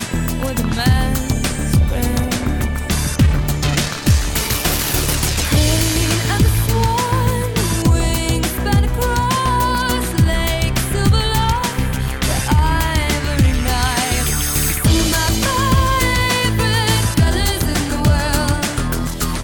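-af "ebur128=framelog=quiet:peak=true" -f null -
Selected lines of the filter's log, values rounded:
Integrated loudness:
  I:         -16.7 LUFS
  Threshold: -26.7 LUFS
Loudness range:
  LRA:         2.0 LU
  Threshold: -36.6 LUFS
  LRA low:   -17.5 LUFS
  LRA high:  -15.5 LUFS
True peak:
  Peak:       -2.7 dBFS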